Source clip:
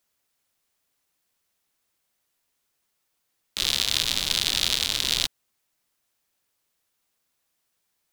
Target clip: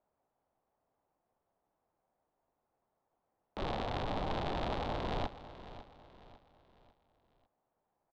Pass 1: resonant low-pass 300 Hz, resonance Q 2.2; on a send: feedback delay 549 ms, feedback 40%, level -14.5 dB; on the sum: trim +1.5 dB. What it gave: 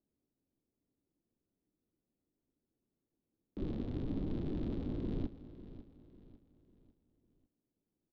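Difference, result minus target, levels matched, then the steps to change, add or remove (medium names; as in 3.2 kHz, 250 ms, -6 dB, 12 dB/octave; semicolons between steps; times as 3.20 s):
1 kHz band -19.5 dB
change: resonant low-pass 780 Hz, resonance Q 2.2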